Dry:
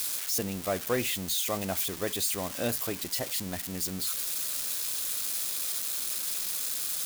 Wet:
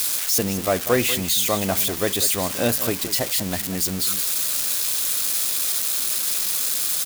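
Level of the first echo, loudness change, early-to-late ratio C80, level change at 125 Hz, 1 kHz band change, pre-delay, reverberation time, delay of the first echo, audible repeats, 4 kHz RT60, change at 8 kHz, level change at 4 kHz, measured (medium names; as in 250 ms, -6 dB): -12.5 dB, +9.0 dB, no reverb, +9.5 dB, +9.0 dB, no reverb, no reverb, 192 ms, 1, no reverb, +9.0 dB, +9.0 dB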